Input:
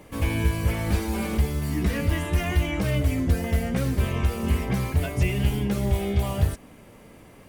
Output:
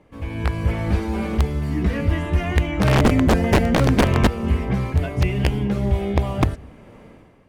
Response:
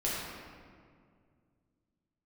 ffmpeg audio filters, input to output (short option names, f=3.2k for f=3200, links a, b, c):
-filter_complex "[0:a]asplit=2[a][b];[1:a]atrim=start_sample=2205,atrim=end_sample=4410,adelay=135[c];[b][c]afir=irnorm=-1:irlink=0,volume=-28.5dB[d];[a][d]amix=inputs=2:normalize=0,asplit=3[e][f][g];[e]afade=t=out:st=2.8:d=0.02[h];[f]acontrast=38,afade=t=in:st=2.8:d=0.02,afade=t=out:st=4.26:d=0.02[i];[g]afade=t=in:st=4.26:d=0.02[j];[h][i][j]amix=inputs=3:normalize=0,aeval=exprs='(mod(3.76*val(0)+1,2)-1)/3.76':c=same,aemphasis=mode=reproduction:type=75fm,dynaudnorm=f=100:g=9:m=14dB,volume=-7dB"